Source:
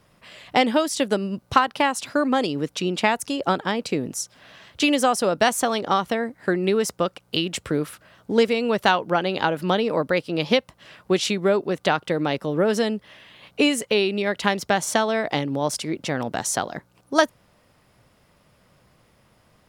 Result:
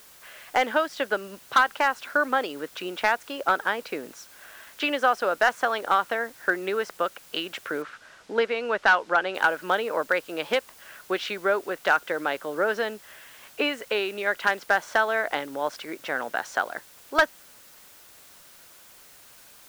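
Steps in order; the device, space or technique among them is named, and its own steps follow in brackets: drive-through speaker (BPF 480–2900 Hz; bell 1500 Hz +9.5 dB 0.41 oct; hard clip -9.5 dBFS, distortion -16 dB; white noise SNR 24 dB); 7.82–9.35 LPF 5600 Hz 12 dB/oct; gain -2 dB

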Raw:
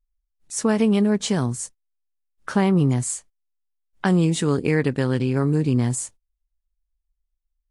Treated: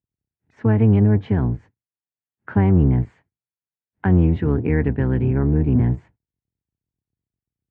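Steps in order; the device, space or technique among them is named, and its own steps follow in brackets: sub-octave bass pedal (octaver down 1 oct, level +2 dB; speaker cabinet 73–2000 Hz, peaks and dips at 120 Hz +4 dB, 560 Hz -7 dB, 1200 Hz -9 dB)

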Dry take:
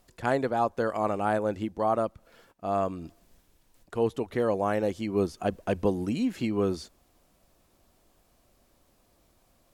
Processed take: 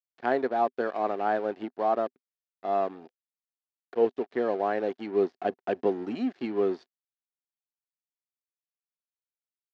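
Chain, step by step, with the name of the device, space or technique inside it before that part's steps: blown loudspeaker (crossover distortion -41.5 dBFS; speaker cabinet 240–4800 Hz, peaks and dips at 250 Hz +6 dB, 390 Hz +9 dB, 720 Hz +8 dB, 1700 Hz +6 dB); 2.95–4.05 bell 500 Hz +9.5 dB 0.25 oct; gain -4 dB

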